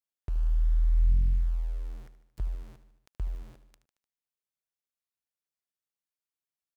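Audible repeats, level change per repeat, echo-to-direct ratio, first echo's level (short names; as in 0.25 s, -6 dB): 4, -4.5 dB, -11.0 dB, -13.0 dB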